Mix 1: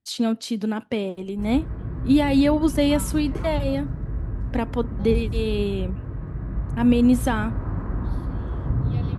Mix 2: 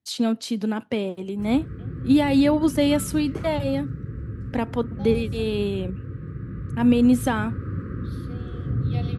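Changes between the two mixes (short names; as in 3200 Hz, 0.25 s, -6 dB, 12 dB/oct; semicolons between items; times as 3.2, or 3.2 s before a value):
second voice +5.0 dB; background: add elliptic band-stop 520–1200 Hz, stop band 40 dB; master: add HPF 74 Hz 24 dB/oct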